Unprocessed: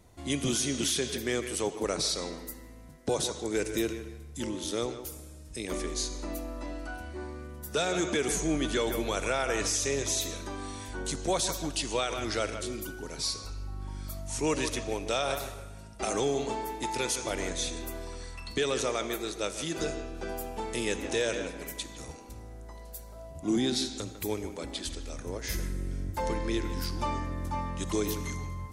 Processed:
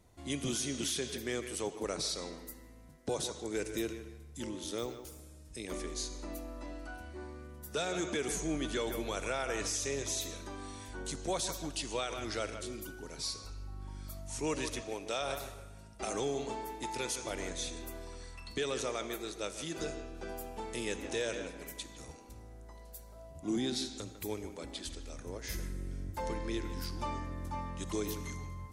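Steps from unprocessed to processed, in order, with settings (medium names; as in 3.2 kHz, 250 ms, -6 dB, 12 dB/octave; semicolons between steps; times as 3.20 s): 4.78–5.20 s: careless resampling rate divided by 2×, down filtered, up hold; 14.81–15.21 s: high-pass 180 Hz 6 dB/octave; trim -6 dB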